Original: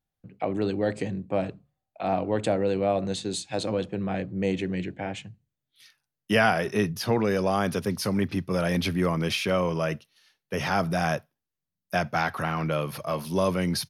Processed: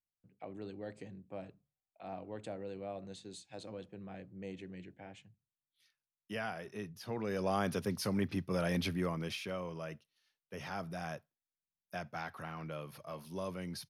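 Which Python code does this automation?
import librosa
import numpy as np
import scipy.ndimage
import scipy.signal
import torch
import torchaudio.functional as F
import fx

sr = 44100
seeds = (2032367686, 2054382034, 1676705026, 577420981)

y = fx.gain(x, sr, db=fx.line((6.98, -18.5), (7.52, -8.0), (8.81, -8.0), (9.59, -16.0)))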